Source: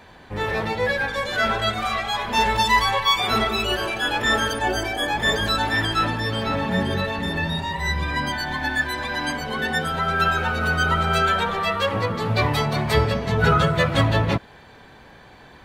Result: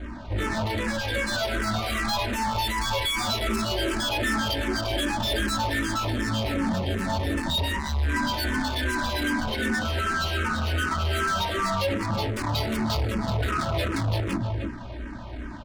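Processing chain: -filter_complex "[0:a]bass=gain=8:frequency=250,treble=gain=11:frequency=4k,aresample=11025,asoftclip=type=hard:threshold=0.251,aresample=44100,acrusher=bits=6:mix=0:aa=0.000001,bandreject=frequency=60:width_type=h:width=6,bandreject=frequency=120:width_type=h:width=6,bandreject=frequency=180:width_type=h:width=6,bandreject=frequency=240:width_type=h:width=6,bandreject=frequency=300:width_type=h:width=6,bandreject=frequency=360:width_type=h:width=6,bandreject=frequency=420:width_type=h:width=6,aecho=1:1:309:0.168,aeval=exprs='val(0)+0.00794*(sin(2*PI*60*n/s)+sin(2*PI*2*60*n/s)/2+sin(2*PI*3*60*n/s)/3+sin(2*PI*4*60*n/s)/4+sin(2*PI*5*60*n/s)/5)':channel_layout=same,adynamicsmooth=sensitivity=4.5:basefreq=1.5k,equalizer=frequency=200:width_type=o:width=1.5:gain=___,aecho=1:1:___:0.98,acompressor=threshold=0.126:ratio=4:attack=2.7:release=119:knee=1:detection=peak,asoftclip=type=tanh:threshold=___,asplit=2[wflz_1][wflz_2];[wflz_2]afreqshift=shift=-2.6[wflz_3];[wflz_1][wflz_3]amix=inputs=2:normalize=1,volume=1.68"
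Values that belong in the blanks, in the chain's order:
4.5, 3.2, 0.0562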